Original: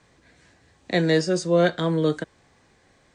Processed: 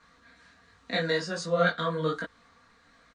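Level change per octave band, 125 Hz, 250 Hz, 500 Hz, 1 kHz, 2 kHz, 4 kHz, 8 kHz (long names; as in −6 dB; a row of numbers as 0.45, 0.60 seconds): −8.5, −11.0, −6.5, −0.5, −0.5, −3.0, −7.0 decibels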